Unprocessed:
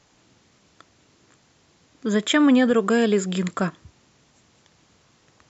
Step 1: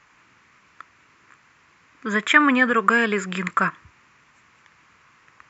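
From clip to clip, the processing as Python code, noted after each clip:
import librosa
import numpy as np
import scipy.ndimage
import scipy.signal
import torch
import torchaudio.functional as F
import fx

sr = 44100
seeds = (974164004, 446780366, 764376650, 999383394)

y = fx.band_shelf(x, sr, hz=1600.0, db=14.5, octaves=1.7)
y = y * 10.0 ** (-4.5 / 20.0)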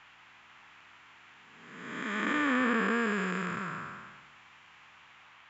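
y = fx.spec_blur(x, sr, span_ms=600.0)
y = fx.dmg_noise_band(y, sr, seeds[0], low_hz=760.0, high_hz=3000.0, level_db=-54.0)
y = y * 10.0 ** (-4.0 / 20.0)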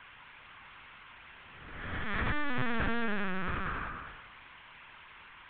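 y = 10.0 ** (-28.5 / 20.0) * np.tanh(x / 10.0 ** (-28.5 / 20.0))
y = fx.lpc_vocoder(y, sr, seeds[1], excitation='pitch_kept', order=10)
y = y * 10.0 ** (3.5 / 20.0)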